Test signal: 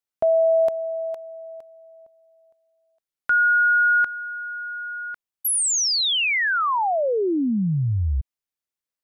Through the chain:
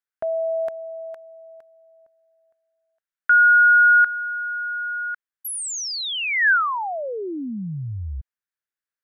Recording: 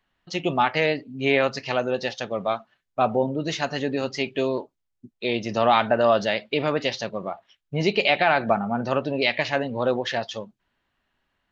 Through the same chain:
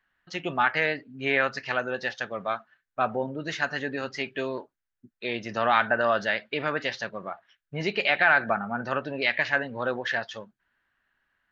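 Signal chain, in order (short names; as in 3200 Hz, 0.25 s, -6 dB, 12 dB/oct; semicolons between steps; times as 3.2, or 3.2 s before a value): bell 1600 Hz +14 dB 0.79 oct; gain -7.5 dB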